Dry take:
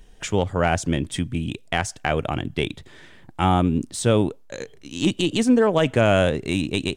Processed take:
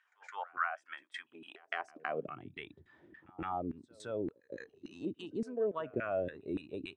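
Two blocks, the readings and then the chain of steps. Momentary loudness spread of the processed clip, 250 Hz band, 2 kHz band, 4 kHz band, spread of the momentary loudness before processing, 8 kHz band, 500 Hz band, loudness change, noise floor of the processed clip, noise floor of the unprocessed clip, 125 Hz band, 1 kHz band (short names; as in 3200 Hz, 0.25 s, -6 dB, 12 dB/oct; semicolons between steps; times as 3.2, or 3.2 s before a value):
15 LU, -20.5 dB, -14.5 dB, -24.0 dB, 11 LU, -32.0 dB, -16.0 dB, -17.5 dB, -76 dBFS, -48 dBFS, -27.0 dB, -14.5 dB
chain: high-pass sweep 1300 Hz -> 79 Hz, 1.19–2.6; compressor 2:1, threshold -37 dBFS, peak gain reduction 14 dB; LFO band-pass saw down 3.5 Hz 290–1800 Hz; spectral noise reduction 11 dB; reverse echo 0.165 s -23.5 dB; gain +2 dB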